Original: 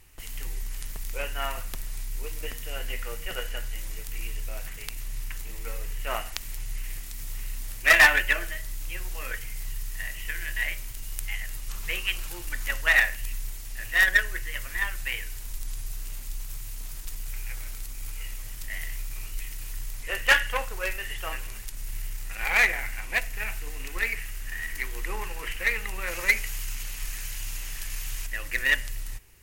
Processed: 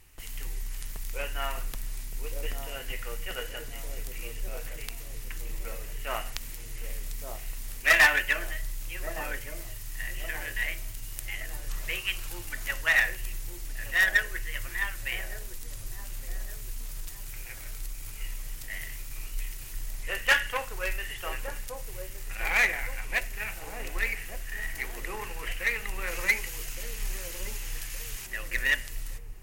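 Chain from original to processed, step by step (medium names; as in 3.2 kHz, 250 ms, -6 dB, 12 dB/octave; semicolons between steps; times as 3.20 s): in parallel at -9.5 dB: saturation -22.5 dBFS, distortion -8 dB; on the sum: feedback echo behind a low-pass 1167 ms, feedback 44%, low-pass 610 Hz, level -3.5 dB; trim -4 dB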